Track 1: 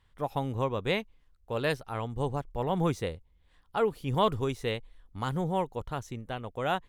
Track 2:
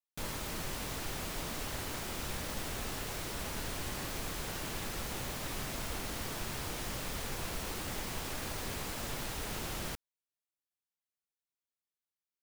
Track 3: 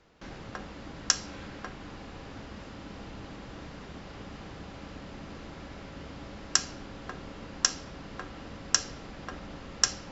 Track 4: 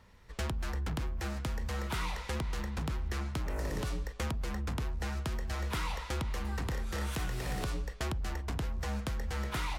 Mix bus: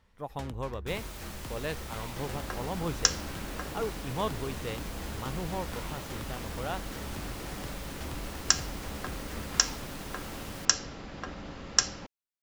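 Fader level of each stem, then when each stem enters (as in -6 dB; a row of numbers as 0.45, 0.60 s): -6.5, -4.5, +1.0, -8.0 dB; 0.00, 0.70, 1.95, 0.00 s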